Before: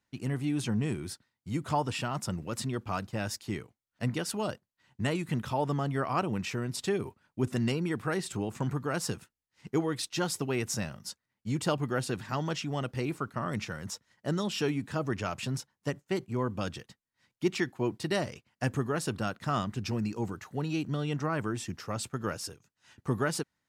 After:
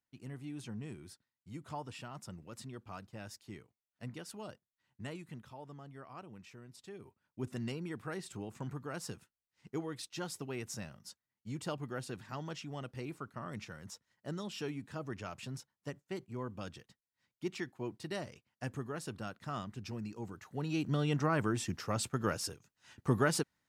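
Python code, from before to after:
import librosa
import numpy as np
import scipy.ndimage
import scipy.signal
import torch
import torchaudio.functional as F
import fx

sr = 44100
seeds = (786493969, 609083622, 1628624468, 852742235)

y = fx.gain(x, sr, db=fx.line((5.13, -13.5), (5.57, -20.0), (6.89, -20.0), (7.4, -10.0), (20.26, -10.0), (20.96, 0.0)))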